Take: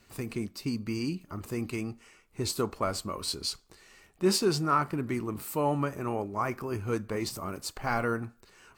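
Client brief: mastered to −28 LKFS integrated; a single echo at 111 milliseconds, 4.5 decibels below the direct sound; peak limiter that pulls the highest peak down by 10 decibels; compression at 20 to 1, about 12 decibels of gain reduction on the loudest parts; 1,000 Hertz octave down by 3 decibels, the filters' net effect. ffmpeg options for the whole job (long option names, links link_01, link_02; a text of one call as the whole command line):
ffmpeg -i in.wav -af "equalizer=frequency=1000:width_type=o:gain=-4,acompressor=threshold=-32dB:ratio=20,alimiter=level_in=9dB:limit=-24dB:level=0:latency=1,volume=-9dB,aecho=1:1:111:0.596,volume=13.5dB" out.wav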